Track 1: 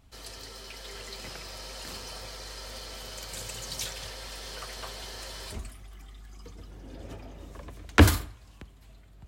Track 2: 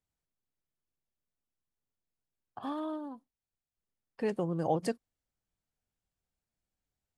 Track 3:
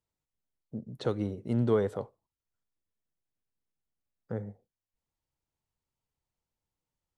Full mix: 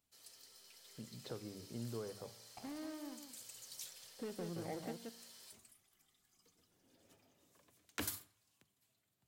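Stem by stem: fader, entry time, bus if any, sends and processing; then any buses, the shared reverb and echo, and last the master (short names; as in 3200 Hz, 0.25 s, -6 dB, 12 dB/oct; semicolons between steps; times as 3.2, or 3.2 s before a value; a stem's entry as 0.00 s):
-11.5 dB, 0.00 s, no bus, no send, no echo send, HPF 110 Hz 24 dB/oct; pre-emphasis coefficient 0.8; short-mantissa float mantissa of 2-bit
+2.5 dB, 0.00 s, bus A, no send, echo send -20 dB, median filter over 41 samples
-2.5 dB, 0.25 s, bus A, no send, no echo send, dry
bus A: 0.0 dB, resonator 58 Hz, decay 0.75 s, harmonics all, mix 50%; compressor 2:1, threshold -50 dBFS, peak gain reduction 12 dB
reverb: off
echo: echo 0.176 s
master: notches 50/100/150/200 Hz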